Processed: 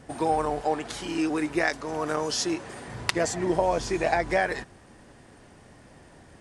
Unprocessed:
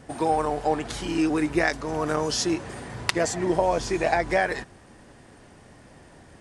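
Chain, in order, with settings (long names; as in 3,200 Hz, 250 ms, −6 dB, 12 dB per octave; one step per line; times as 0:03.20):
0:00.61–0:02.88: low-shelf EQ 150 Hz −10 dB
level −1.5 dB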